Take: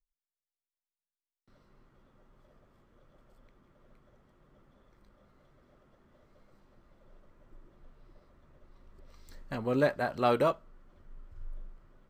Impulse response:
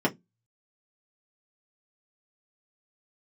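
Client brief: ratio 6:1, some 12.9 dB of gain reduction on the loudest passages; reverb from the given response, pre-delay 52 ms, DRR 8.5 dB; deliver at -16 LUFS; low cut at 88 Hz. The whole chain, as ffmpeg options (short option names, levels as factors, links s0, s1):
-filter_complex "[0:a]highpass=88,acompressor=threshold=0.0178:ratio=6,asplit=2[s0][s1];[1:a]atrim=start_sample=2205,adelay=52[s2];[s1][s2]afir=irnorm=-1:irlink=0,volume=0.0944[s3];[s0][s3]amix=inputs=2:normalize=0,volume=12.6"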